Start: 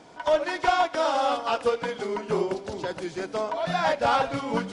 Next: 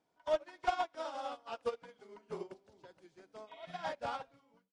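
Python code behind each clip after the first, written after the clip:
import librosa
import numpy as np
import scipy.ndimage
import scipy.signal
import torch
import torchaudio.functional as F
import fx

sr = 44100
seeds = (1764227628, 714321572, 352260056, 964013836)

y = fx.fade_out_tail(x, sr, length_s=0.73)
y = fx.spec_repair(y, sr, seeds[0], start_s=3.5, length_s=0.34, low_hz=1900.0, high_hz=3800.0, source='after')
y = fx.upward_expand(y, sr, threshold_db=-32.0, expansion=2.5)
y = F.gain(torch.from_numpy(y), -8.5).numpy()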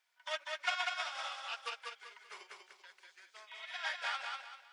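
y = fx.highpass_res(x, sr, hz=1900.0, q=1.6)
y = fx.echo_feedback(y, sr, ms=194, feedback_pct=33, wet_db=-3.5)
y = F.gain(torch.from_numpy(y), 6.0).numpy()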